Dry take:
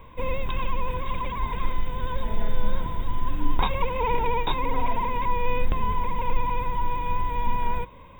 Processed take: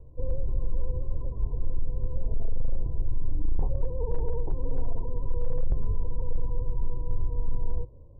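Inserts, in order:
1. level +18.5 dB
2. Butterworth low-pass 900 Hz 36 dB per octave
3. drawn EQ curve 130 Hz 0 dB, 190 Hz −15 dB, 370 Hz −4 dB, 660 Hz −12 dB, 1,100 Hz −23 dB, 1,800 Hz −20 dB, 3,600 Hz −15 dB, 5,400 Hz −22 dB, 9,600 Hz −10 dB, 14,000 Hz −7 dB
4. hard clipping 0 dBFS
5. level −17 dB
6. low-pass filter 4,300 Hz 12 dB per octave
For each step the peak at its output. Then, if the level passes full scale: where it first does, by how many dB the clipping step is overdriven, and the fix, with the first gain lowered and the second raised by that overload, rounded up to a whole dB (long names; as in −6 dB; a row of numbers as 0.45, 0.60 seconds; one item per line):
+9.0, +9.0, +8.0, 0.0, −17.0, −17.0 dBFS
step 1, 8.0 dB
step 1 +10.5 dB, step 5 −9 dB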